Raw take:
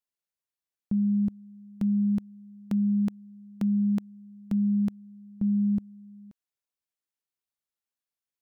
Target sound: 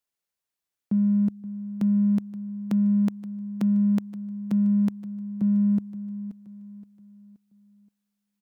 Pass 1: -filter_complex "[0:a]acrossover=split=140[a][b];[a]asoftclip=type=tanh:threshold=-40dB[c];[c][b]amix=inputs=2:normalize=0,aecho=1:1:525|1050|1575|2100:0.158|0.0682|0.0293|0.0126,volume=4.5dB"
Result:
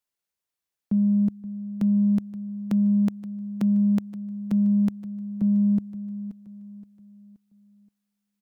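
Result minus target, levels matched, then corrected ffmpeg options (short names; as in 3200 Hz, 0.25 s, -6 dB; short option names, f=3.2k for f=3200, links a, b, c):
soft clip: distortion -9 dB
-filter_complex "[0:a]acrossover=split=140[a][b];[a]asoftclip=type=tanh:threshold=-51dB[c];[c][b]amix=inputs=2:normalize=0,aecho=1:1:525|1050|1575|2100:0.158|0.0682|0.0293|0.0126,volume=4.5dB"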